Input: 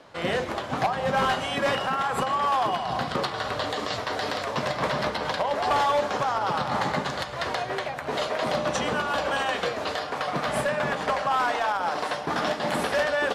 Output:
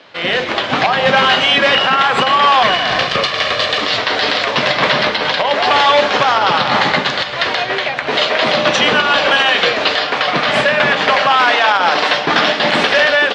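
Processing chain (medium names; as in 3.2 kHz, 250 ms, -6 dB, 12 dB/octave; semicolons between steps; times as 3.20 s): 2.63–3.81 s: comb filter that takes the minimum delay 1.7 ms; frequency weighting D; level rider; peak limiter -6 dBFS, peak gain reduction 4.5 dB; distance through air 140 m; trim +6 dB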